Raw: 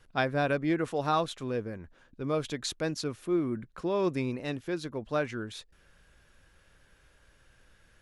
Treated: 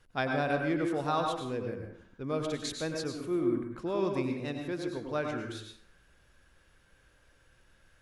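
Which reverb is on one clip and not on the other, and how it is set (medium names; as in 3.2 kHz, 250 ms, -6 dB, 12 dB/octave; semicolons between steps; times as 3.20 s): plate-style reverb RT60 0.6 s, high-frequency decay 0.65×, pre-delay 85 ms, DRR 3 dB; trim -3.5 dB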